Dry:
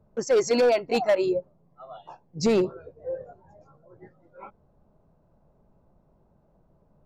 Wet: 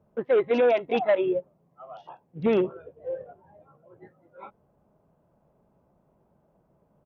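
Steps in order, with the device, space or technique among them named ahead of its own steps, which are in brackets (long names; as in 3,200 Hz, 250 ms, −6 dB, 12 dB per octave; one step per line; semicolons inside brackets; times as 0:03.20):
Bluetooth headset (high-pass filter 150 Hz 6 dB per octave; downsampling to 8,000 Hz; SBC 64 kbit/s 48,000 Hz)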